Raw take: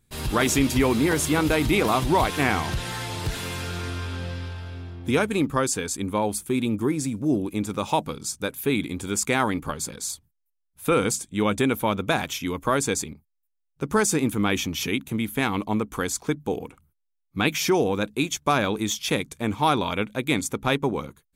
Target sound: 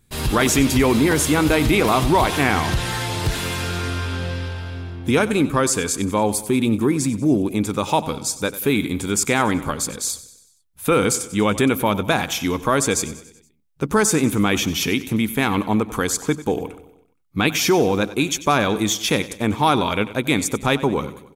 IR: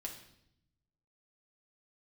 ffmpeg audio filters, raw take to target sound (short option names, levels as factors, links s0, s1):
-filter_complex "[0:a]asplit=2[s0][s1];[s1]alimiter=limit=0.133:level=0:latency=1,volume=0.841[s2];[s0][s2]amix=inputs=2:normalize=0,aecho=1:1:94|188|282|376|470:0.158|0.0856|0.0462|0.025|0.0135,volume=1.12"